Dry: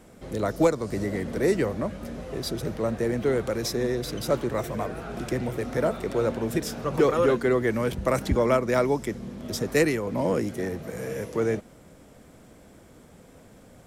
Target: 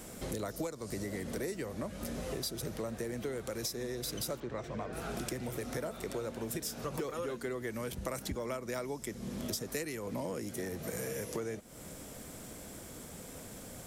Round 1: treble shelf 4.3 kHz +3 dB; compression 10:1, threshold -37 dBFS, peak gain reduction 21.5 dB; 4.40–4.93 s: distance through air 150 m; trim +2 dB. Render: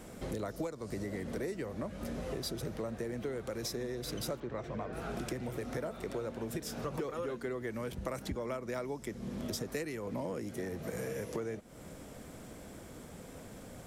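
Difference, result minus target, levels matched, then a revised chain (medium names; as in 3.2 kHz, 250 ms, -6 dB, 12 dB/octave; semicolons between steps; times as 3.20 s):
8 kHz band -5.0 dB
treble shelf 4.3 kHz +13.5 dB; compression 10:1, threshold -37 dBFS, peak gain reduction 22 dB; 4.40–4.93 s: distance through air 150 m; trim +2 dB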